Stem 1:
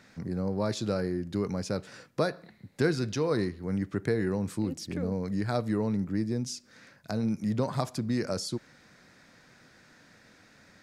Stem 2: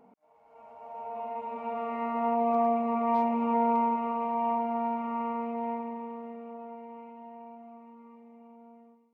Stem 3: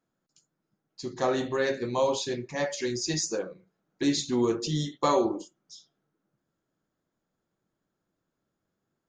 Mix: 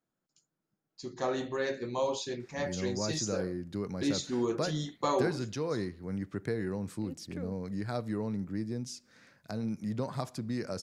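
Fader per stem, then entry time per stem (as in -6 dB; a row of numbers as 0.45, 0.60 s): -5.5 dB, off, -5.5 dB; 2.40 s, off, 0.00 s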